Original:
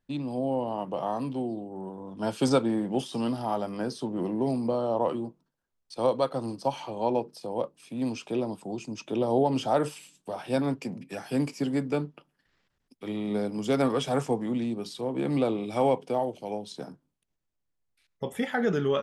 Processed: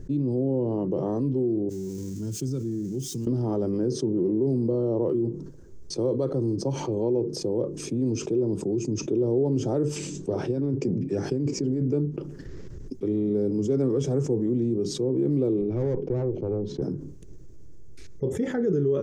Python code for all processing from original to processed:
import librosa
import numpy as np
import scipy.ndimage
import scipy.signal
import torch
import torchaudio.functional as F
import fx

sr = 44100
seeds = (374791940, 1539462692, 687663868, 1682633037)

y = fx.chain(x, sr, fx.crossing_spikes(level_db=-27.0),
    fx.tone_stack(knobs='6-0-2'), at=(1.69, 3.27))
y = fx.chain(y, sr, fx.lowpass(hz=6800.0, slope=12),
    fx.over_compress(threshold_db=-32.0, ratio=-1.0), at=(9.96, 11.92))
y = fx.chain(y, sr, fx.lowpass(hz=2200.0, slope=12),
    fx.tube_stage(drive_db=27.0, bias=0.6), at=(15.61, 16.82))
y = fx.curve_eq(y, sr, hz=(130.0, 230.0, 380.0, 710.0, 1800.0, 2900.0, 4100.0, 6500.0, 10000.0), db=(0, -9, 2, -23, -24, -29, -26, -13, -30))
y = fx.env_flatten(y, sr, amount_pct=70)
y = y * 10.0 ** (2.5 / 20.0)